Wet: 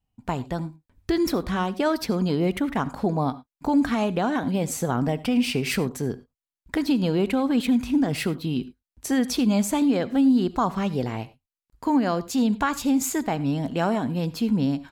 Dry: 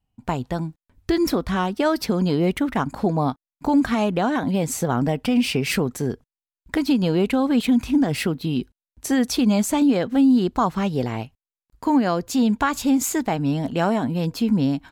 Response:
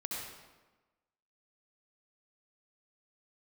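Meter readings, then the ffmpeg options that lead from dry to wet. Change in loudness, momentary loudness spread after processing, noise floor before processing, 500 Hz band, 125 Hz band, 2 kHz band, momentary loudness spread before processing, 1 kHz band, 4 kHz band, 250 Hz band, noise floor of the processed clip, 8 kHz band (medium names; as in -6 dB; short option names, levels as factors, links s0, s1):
-2.5 dB, 9 LU, under -85 dBFS, -2.5 dB, -2.5 dB, -2.5 dB, 10 LU, -2.5 dB, -2.5 dB, -2.5 dB, under -85 dBFS, -2.5 dB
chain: -filter_complex "[0:a]asplit=2[s0][s1];[1:a]atrim=start_sample=2205,afade=t=out:st=0.16:d=0.01,atrim=end_sample=7497[s2];[s1][s2]afir=irnorm=-1:irlink=0,volume=0.224[s3];[s0][s3]amix=inputs=2:normalize=0,volume=0.631"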